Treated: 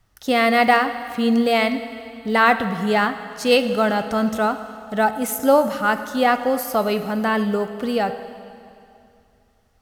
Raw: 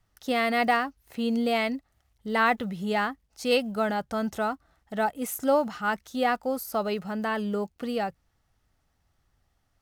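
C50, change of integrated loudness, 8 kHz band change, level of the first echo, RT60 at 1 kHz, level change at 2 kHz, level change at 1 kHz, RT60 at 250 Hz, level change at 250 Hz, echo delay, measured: 10.5 dB, +8.0 dB, +8.0 dB, no echo, 2.6 s, +8.0 dB, +8.0 dB, 2.7 s, +8.0 dB, no echo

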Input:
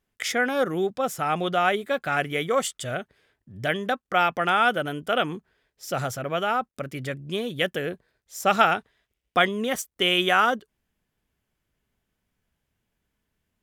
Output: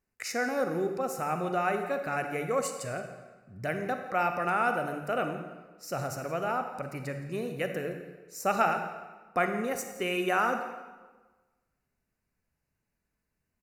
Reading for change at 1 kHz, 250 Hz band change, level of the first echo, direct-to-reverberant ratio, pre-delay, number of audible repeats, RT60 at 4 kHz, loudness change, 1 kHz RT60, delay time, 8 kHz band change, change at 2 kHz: -5.5 dB, -4.5 dB, -17.5 dB, 6.0 dB, 38 ms, 1, 1.0 s, -6.5 dB, 1.3 s, 170 ms, -5.0 dB, -7.5 dB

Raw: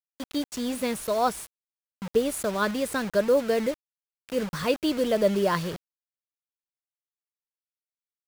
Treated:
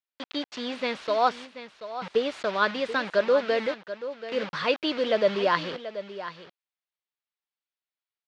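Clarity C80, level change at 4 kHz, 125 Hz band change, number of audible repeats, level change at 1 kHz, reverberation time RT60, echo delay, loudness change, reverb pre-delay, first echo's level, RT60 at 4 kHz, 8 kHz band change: no reverb, +3.5 dB, -8.0 dB, 1, +2.5 dB, no reverb, 733 ms, -0.5 dB, no reverb, -12.5 dB, no reverb, under -10 dB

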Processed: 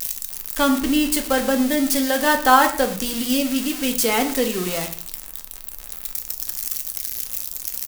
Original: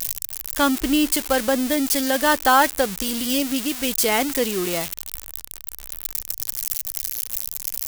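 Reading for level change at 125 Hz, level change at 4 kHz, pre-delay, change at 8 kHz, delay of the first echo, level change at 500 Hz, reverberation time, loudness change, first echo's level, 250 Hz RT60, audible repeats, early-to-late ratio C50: +2.0 dB, 0.0 dB, 4 ms, -0.5 dB, 114 ms, +0.5 dB, 0.45 s, +1.0 dB, -18.0 dB, 0.55 s, 1, 11.0 dB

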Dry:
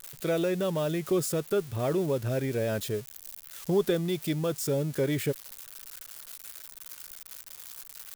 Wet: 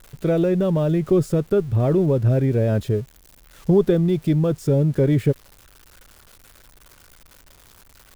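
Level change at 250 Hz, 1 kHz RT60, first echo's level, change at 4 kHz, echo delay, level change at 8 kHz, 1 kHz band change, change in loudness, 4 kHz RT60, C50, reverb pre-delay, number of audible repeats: +10.5 dB, no reverb, no echo, -3.0 dB, no echo, no reading, +4.0 dB, +9.0 dB, no reverb, no reverb, no reverb, no echo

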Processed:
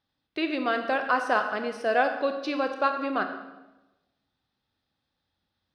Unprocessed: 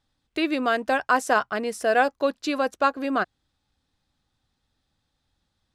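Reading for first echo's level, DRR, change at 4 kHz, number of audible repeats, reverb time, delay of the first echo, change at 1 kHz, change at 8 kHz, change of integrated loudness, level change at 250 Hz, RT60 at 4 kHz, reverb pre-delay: no echo, 6.0 dB, -3.0 dB, no echo, 1.0 s, no echo, -2.5 dB, under -10 dB, -3.0 dB, -3.5 dB, 0.90 s, 25 ms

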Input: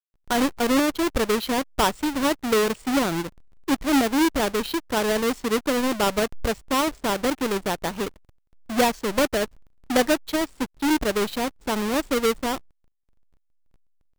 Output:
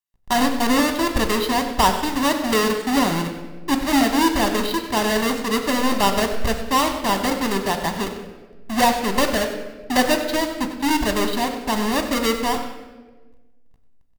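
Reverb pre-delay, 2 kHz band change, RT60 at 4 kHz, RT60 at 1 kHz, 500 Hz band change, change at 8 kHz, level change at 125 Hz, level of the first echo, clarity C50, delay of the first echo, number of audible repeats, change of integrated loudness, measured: 3 ms, +4.0 dB, 0.90 s, 1.1 s, +1.0 dB, +3.5 dB, +5.0 dB, -13.0 dB, 7.5 dB, 95 ms, 2, +3.0 dB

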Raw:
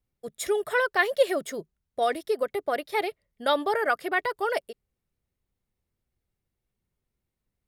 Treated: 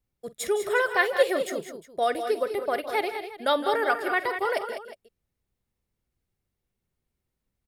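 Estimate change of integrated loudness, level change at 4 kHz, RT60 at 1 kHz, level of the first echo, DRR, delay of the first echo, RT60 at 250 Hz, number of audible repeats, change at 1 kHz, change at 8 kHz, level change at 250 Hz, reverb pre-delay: +0.5 dB, +1.0 dB, no reverb, -16.5 dB, no reverb, 46 ms, no reverb, 4, +1.0 dB, +1.0 dB, +1.0 dB, no reverb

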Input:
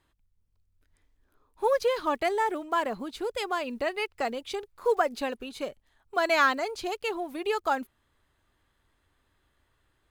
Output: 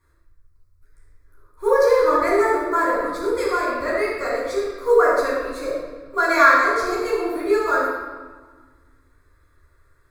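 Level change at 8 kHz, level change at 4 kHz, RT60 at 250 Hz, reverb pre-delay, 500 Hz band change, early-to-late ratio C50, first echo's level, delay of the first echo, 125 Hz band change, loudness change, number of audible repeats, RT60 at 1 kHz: +7.0 dB, +0.5 dB, 2.7 s, 9 ms, +10.0 dB, -1.0 dB, no echo, no echo, no reading, +9.5 dB, no echo, 1.5 s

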